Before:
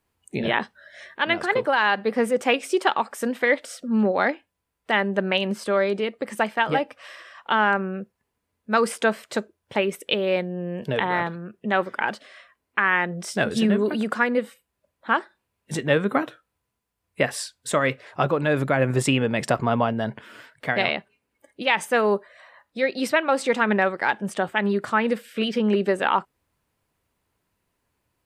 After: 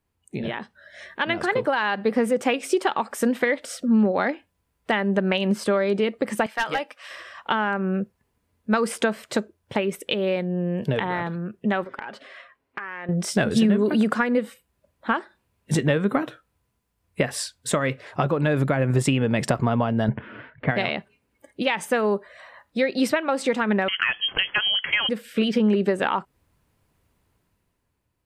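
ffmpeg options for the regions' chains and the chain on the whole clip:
-filter_complex "[0:a]asettb=1/sr,asplit=3[s0][s1][s2];[s0]atrim=end=6.464[s3];[s1]atrim=start=6.46:end=7.11,asetpts=PTS-STARTPTS,afade=t=in:d=0.004:c=qsin,afade=t=out:st=0.646:d=0.004:c=qsin,highpass=f=1400:p=1,volume=8.91,asoftclip=hard,volume=0.112[s4];[s2]atrim=start=7.106[s5];[s3][s4]acrossfade=d=0.004:c1=hsin:c2=qsin[s6];[s6][s5]acrossfade=d=0.004:c1=qsin:c2=hsin,asettb=1/sr,asplit=3[s7][s8][s9];[s7]atrim=end=11.844[s10];[s8]atrim=start=11.84:end=13.09,asetpts=PTS-STARTPTS,afade=t=in:d=0.004:c=qsin,afade=t=out:st=1.246:d=0.004:c=qsin,bass=f=250:g=-8,treble=f=4000:g=-10,aecho=1:1:7.4:0.34,atrim=end_sample=55125,acompressor=threshold=0.0224:ratio=12:attack=3.2:release=140:knee=1:detection=peak[s11];[s9]atrim=start=13.086[s12];[s10][s11]acrossfade=d=0.004:c1=hsin:c2=qsin[s13];[s13][s12]acrossfade=d=0.004:c1=qsin:c2=hsin,asettb=1/sr,asplit=3[s14][s15][s16];[s14]atrim=end=20.084[s17];[s15]atrim=start=20.08:end=20.71,asetpts=PTS-STARTPTS,afade=t=in:d=0.004:c=qsin,afade=t=out:st=0.626:d=0.004:c=qsin,lowpass=f=2700:w=0.5412,lowpass=f=2700:w=1.3066,lowshelf=f=320:g=6.5[s18];[s16]atrim=start=20.706[s19];[s17][s18]acrossfade=d=0.004:c1=hsin:c2=qsin[s20];[s20][s19]acrossfade=d=0.004:c1=qsin:c2=hsin,asettb=1/sr,asplit=3[s21][s22][s23];[s21]atrim=end=23.884[s24];[s22]atrim=start=23.88:end=25.09,asetpts=PTS-STARTPTS,afade=t=in:d=0.004:c=qsin,afade=t=out:st=1.206:d=0.004:c=qsin,aemphasis=mode=production:type=75fm,acontrast=82,lowpass=f=2900:t=q:w=0.5098,lowpass=f=2900:t=q:w=0.6013,lowpass=f=2900:t=q:w=0.9,lowpass=f=2900:t=q:w=2.563,afreqshift=-3400[s25];[s23]atrim=start=25.086[s26];[s24][s25]acrossfade=d=0.004:c1=hsin:c2=qsin[s27];[s27][s26]acrossfade=d=0.004:c1=qsin:c2=hsin,acompressor=threshold=0.0708:ratio=6,lowshelf=f=260:g=7.5,dynaudnorm=f=140:g=13:m=3.35,volume=0.531"

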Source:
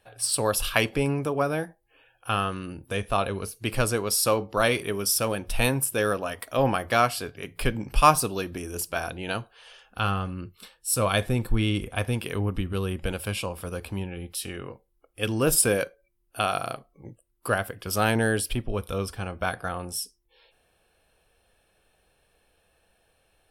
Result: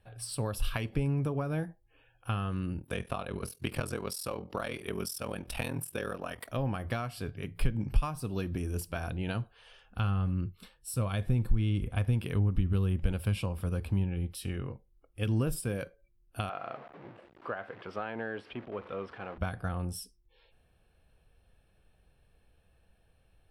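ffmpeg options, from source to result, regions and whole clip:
-filter_complex "[0:a]asettb=1/sr,asplit=3[s0][s1][s2];[s0]atrim=end=2.784[s3];[s1]atrim=start=2.78:end=6.49,asetpts=PTS-STARTPTS,afade=t=in:d=0.004:c=qsin,afade=t=out:st=3.706:d=0.004:c=qsin,highpass=f=400:p=1,acontrast=86,aeval=exprs='val(0)*sin(2*PI*21*n/s)':c=same[s4];[s2]atrim=start=6.486[s5];[s3][s4]acrossfade=d=0.004:c1=hsin:c2=qsin[s6];[s6][s5]acrossfade=d=0.004:c1=qsin:c2=hsin,asettb=1/sr,asplit=3[s7][s8][s9];[s7]atrim=end=16.494[s10];[s8]atrim=start=16.49:end=19.38,asetpts=PTS-STARTPTS,afade=t=in:d=0.004:c=qsin,afade=t=out:st=2.886:d=0.004:c=qsin,aeval=exprs='val(0)+0.5*0.02*sgn(val(0))':c=same,highpass=470,lowpass=2600,aemphasis=mode=reproduction:type=50fm[s11];[s9]atrim=start=19.376[s12];[s10][s11]acrossfade=d=0.004:c1=hsin:c2=qsin[s13];[s13][s12]acrossfade=d=0.004:c1=qsin:c2=hsin,equalizer=f=6600:w=5.8:g=-4,acompressor=threshold=0.0501:ratio=12,bass=f=250:g=13,treble=f=4000:g=-4,volume=0.473"

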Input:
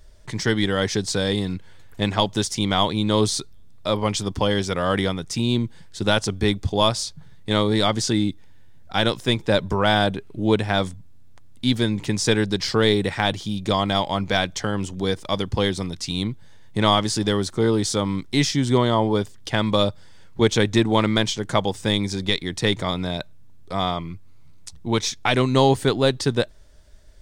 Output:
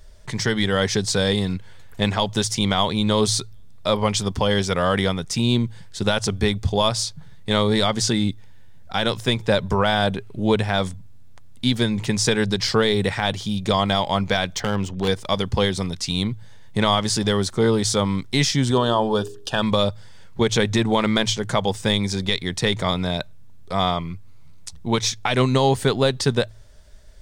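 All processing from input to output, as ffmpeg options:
-filter_complex "[0:a]asettb=1/sr,asplit=3[s0][s1][s2];[s0]atrim=end=14.554[s3];[s1]atrim=start=14.55:end=15.08,asetpts=PTS-STARTPTS,afade=t=in:d=0.004:c=qsin,afade=t=out:st=0.526:d=0.004:c=qsin,adynamicsmooth=sensitivity=7.5:basefreq=3900,aeval=exprs='0.158*(abs(mod(val(0)/0.158+3,4)-2)-1)':c=same[s4];[s2]atrim=start=15.076[s5];[s3][s4]acrossfade=d=0.004:c1=hsin:c2=qsin[s6];[s6][s5]acrossfade=d=0.004:c1=qsin:c2=hsin,asettb=1/sr,asplit=3[s7][s8][s9];[s7]atrim=end=18.714[s10];[s8]atrim=start=18.71:end=19.63,asetpts=PTS-STARTPTS,afade=t=in:d=0.004:c=qsin,afade=t=out:st=0.916:d=0.004:c=qsin,asuperstop=centerf=2100:order=8:qfactor=3.6,equalizer=f=84:t=o:w=2.4:g=-5.5,bandreject=f=45.42:t=h:w=4,bandreject=f=90.84:t=h:w=4,bandreject=f=136.26:t=h:w=4,bandreject=f=181.68:t=h:w=4,bandreject=f=227.1:t=h:w=4,bandreject=f=272.52:t=h:w=4,bandreject=f=317.94:t=h:w=4,bandreject=f=363.36:t=h:w=4,bandreject=f=408.78:t=h:w=4,bandreject=f=454.2:t=h:w=4[s11];[s9]atrim=start=19.626[s12];[s10][s11]acrossfade=d=0.004:c1=hsin:c2=qsin[s13];[s13][s12]acrossfade=d=0.004:c1=qsin:c2=hsin,equalizer=f=310:t=o:w=0.31:g=-8,bandreject=f=54.58:t=h:w=4,bandreject=f=109.16:t=h:w=4,alimiter=limit=0.299:level=0:latency=1:release=108,volume=1.41"

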